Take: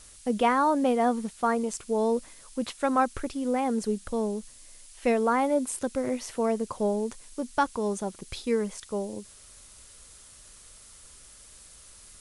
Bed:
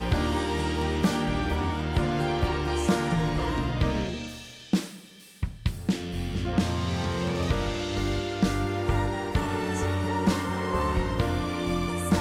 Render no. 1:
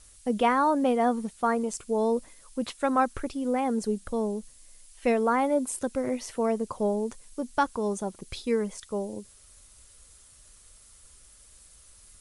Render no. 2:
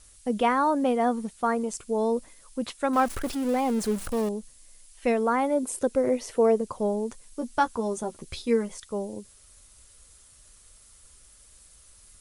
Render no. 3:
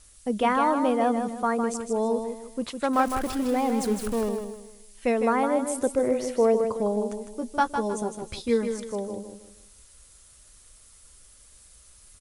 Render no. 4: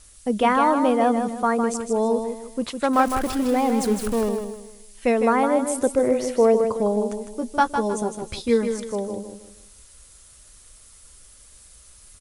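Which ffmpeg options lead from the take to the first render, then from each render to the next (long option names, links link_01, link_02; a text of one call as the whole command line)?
ffmpeg -i in.wav -af "afftdn=noise_reduction=6:noise_floor=-51" out.wav
ffmpeg -i in.wav -filter_complex "[0:a]asettb=1/sr,asplit=3[link_01][link_02][link_03];[link_01]atrim=end=2.934[link_04];[link_02]atrim=start=2.93:end=4.29,asetpts=PTS-STARTPTS,afade=type=in:duration=0.004:curve=qsin,afade=type=out:start_time=1.356:duration=0.004:curve=qsin,aeval=exprs='val(0)+0.5*0.0237*sgn(val(0))':channel_layout=same[link_05];[link_03]atrim=start=4.286[link_06];[link_04][link_05]acrossfade=duration=0.004:curve1=hsin:curve2=qsin[link_07];[link_07][link_06]acrossfade=duration=0.004:curve1=qsin:curve2=hsin,asettb=1/sr,asplit=3[link_08][link_09][link_10];[link_08]atrim=end=5.634[link_11];[link_09]atrim=start=5.63:end=6.61,asetpts=PTS-STARTPTS,afade=type=in:duration=0.004:curve=qsin,afade=type=out:start_time=0.976:duration=0.004:curve=qsin,equalizer=frequency=450:width=1.5:gain=8[link_12];[link_10]atrim=start=6.606[link_13];[link_11][link_12]acrossfade=duration=0.004:curve1=hsin:curve2=qsin[link_14];[link_14][link_13]acrossfade=duration=0.004:curve1=qsin:curve2=hsin,asettb=1/sr,asplit=3[link_15][link_16][link_17];[link_15]atrim=end=7.404[link_18];[link_16]atrim=start=7.4:end=8.78,asetpts=PTS-STARTPTS,afade=type=in:duration=0.004:curve=qsin,afade=type=out:start_time=1.376:duration=0.004:curve=qsin,asplit=2[link_19][link_20];[link_20]adelay=13,volume=-6dB[link_21];[link_19][link_21]amix=inputs=2:normalize=0,atrim=end_sample=60858[link_22];[link_17]atrim=start=8.776[link_23];[link_18][link_22]acrossfade=duration=0.004:curve1=hsin:curve2=qsin[link_24];[link_24][link_23]acrossfade=duration=0.004:curve1=qsin:curve2=hsin" out.wav
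ffmpeg -i in.wav -af "aecho=1:1:156|312|468|624:0.447|0.147|0.0486|0.0161" out.wav
ffmpeg -i in.wav -af "volume=4dB" out.wav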